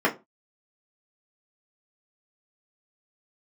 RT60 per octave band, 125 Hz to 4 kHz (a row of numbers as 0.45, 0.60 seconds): 0.30, 0.30, 0.25, 0.25, 0.20, 0.20 seconds